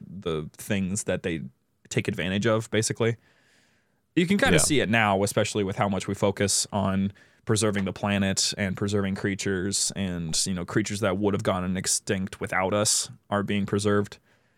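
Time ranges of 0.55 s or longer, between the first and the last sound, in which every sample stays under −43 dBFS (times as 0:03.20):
0:03.15–0:04.17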